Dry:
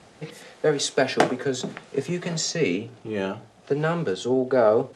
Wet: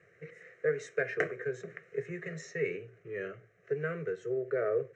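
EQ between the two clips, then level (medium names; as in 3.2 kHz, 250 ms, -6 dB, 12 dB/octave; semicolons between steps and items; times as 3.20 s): cabinet simulation 180–4800 Hz, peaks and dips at 210 Hz -10 dB, 310 Hz -9 dB, 600 Hz -7 dB, 970 Hz -6 dB, 1.4 kHz -8 dB, 2.6 kHz -8 dB; static phaser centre 930 Hz, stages 6; static phaser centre 2 kHz, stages 4; 0.0 dB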